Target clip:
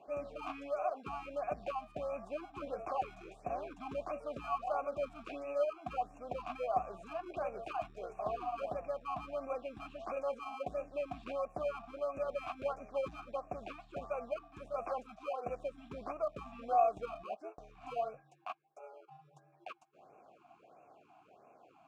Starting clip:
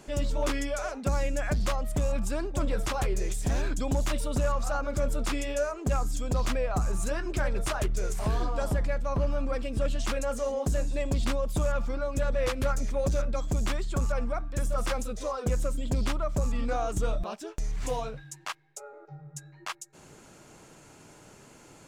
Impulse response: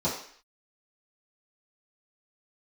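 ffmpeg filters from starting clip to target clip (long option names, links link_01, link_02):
-filter_complex "[0:a]highshelf=frequency=3000:gain=-11.5,asplit=2[link_01][link_02];[link_02]acrusher=samples=24:mix=1:aa=0.000001,volume=-6dB[link_03];[link_01][link_03]amix=inputs=2:normalize=0,asplit=3[link_04][link_05][link_06];[link_04]bandpass=frequency=730:width_type=q:width=8,volume=0dB[link_07];[link_05]bandpass=frequency=1090:width_type=q:width=8,volume=-6dB[link_08];[link_06]bandpass=frequency=2440:width_type=q:width=8,volume=-9dB[link_09];[link_07][link_08][link_09]amix=inputs=3:normalize=0,afftfilt=real='re*(1-between(b*sr/1024,430*pow(4000/430,0.5+0.5*sin(2*PI*1.5*pts/sr))/1.41,430*pow(4000/430,0.5+0.5*sin(2*PI*1.5*pts/sr))*1.41))':imag='im*(1-between(b*sr/1024,430*pow(4000/430,0.5+0.5*sin(2*PI*1.5*pts/sr))/1.41,430*pow(4000/430,0.5+0.5*sin(2*PI*1.5*pts/sr))*1.41))':win_size=1024:overlap=0.75,volume=4.5dB"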